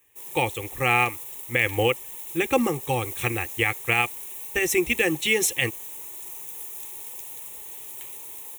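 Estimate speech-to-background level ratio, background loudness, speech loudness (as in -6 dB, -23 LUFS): 10.5 dB, -35.0 LUFS, -24.5 LUFS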